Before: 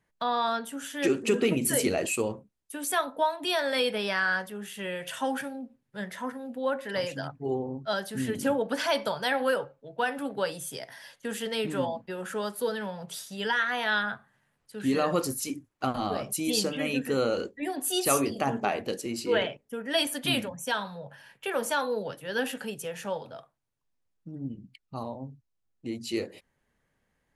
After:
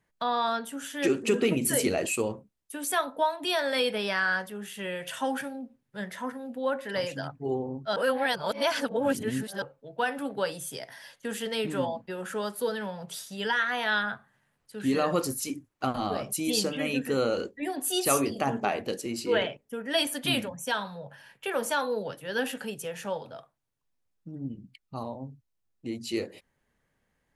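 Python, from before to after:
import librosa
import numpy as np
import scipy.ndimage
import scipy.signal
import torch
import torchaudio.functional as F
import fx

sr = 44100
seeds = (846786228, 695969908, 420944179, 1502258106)

y = fx.edit(x, sr, fx.reverse_span(start_s=7.96, length_s=1.66), tone=tone)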